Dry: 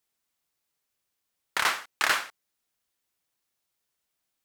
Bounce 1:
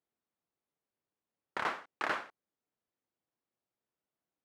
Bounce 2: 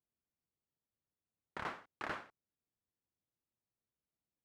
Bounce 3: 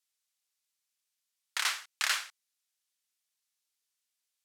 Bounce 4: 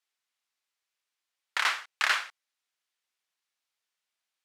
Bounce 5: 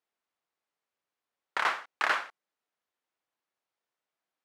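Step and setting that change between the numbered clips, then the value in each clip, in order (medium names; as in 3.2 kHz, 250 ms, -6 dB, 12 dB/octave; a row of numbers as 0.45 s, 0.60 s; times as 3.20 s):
band-pass filter, frequency: 290 Hz, 110 Hz, 6.3 kHz, 2.5 kHz, 790 Hz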